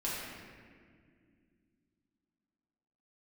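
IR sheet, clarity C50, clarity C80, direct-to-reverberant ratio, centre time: -2.0 dB, 0.0 dB, -8.0 dB, 0.121 s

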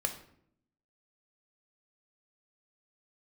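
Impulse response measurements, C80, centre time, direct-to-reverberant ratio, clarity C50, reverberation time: 14.0 dB, 12 ms, 5.0 dB, 10.5 dB, 0.65 s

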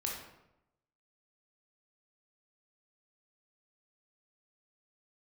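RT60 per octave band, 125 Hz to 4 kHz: 1.0, 0.95, 0.90, 0.85, 0.70, 0.55 s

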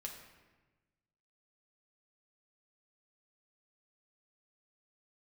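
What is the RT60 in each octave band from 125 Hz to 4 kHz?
1.7, 1.5, 1.3, 1.2, 1.2, 0.90 s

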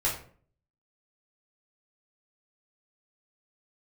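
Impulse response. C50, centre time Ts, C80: 6.5 dB, 29 ms, 11.5 dB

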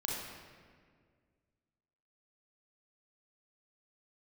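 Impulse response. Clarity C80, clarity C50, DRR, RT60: 2.0 dB, -0.5 dB, -3.5 dB, 1.9 s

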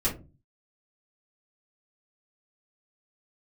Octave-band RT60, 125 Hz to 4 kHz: 0.60, 0.50, 0.35, 0.25, 0.20, 0.15 s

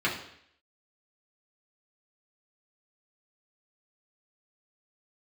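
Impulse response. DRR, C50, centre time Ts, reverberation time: -6.0 dB, 7.0 dB, 30 ms, 0.65 s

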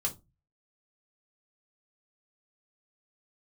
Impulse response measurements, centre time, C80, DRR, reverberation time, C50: 10 ms, 25.0 dB, 0.0 dB, not exponential, 16.0 dB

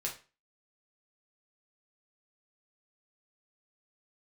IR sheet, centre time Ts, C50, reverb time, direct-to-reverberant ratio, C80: 20 ms, 9.5 dB, 0.35 s, -2.5 dB, 16.0 dB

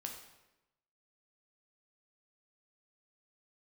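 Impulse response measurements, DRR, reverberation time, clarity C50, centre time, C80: 1.5 dB, 1.0 s, 5.5 dB, 30 ms, 8.0 dB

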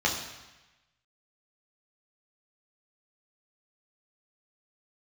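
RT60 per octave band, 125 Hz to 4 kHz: 1.2, 1.0, 1.0, 1.1, 1.2, 1.1 s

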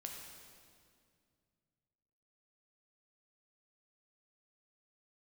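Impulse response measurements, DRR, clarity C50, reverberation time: 0.5 dB, 2.5 dB, 2.2 s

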